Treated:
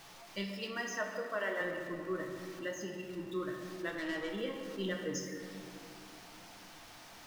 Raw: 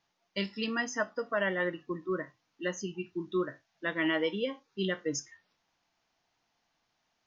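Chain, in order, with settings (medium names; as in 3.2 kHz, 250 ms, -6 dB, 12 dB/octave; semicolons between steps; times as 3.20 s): jump at every zero crossing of -42 dBFS; 0.51–1.61 s: high-pass 290 Hz 24 dB/octave; 2.65–3.09 s: comb of notches 1.2 kHz; 3.89–4.31 s: valve stage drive 29 dB, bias 0.45; on a send: reverberation RT60 2.6 s, pre-delay 3 ms, DRR 2 dB; on the sum: trim -7.5 dB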